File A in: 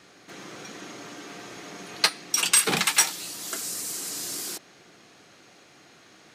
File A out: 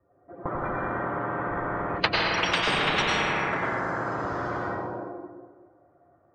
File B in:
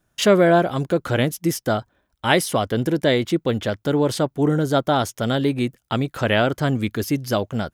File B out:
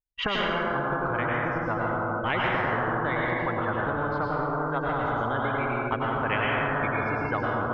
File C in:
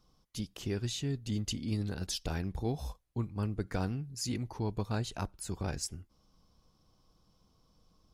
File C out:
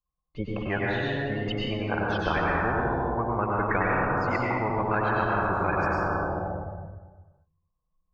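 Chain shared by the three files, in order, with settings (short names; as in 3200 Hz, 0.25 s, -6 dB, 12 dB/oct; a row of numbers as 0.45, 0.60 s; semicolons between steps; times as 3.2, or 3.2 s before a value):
per-bin expansion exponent 2; HPF 45 Hz 6 dB/oct; gate with hold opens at -51 dBFS; LPF 1100 Hz 24 dB/oct; bell 240 Hz -8.5 dB 0.82 oct; compressor 6:1, threshold -34 dBFS; plate-style reverb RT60 1.4 s, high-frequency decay 0.7×, pre-delay 85 ms, DRR -5 dB; spectral compressor 10:1; match loudness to -27 LUFS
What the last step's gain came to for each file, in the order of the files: +17.0, +6.5, +13.0 dB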